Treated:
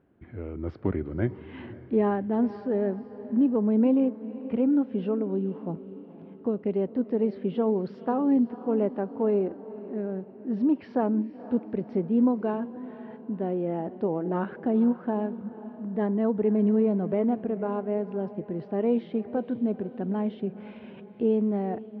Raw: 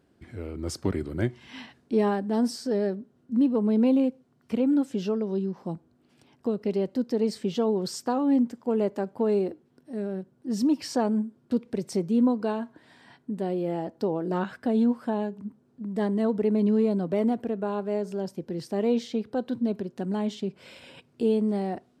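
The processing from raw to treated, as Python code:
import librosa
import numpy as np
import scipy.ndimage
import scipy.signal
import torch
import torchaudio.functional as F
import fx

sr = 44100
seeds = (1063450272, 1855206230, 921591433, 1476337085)

y = scipy.signal.sosfilt(scipy.signal.bessel(6, 1800.0, 'lowpass', norm='mag', fs=sr, output='sos'), x)
y = fx.echo_diffused(y, sr, ms=494, feedback_pct=48, wet_db=-15)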